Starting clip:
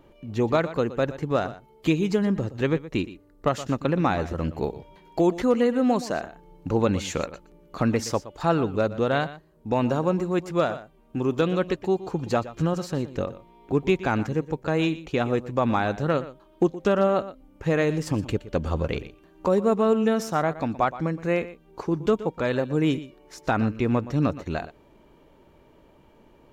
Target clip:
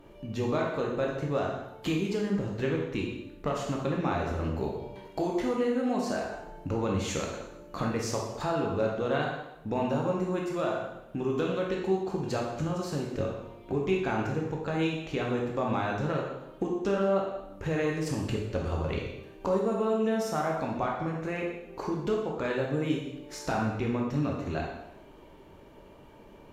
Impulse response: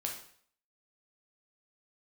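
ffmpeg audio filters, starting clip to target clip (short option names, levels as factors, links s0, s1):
-filter_complex "[0:a]acompressor=threshold=0.0158:ratio=2[s0];[1:a]atrim=start_sample=2205,asetrate=29547,aresample=44100[s1];[s0][s1]afir=irnorm=-1:irlink=0"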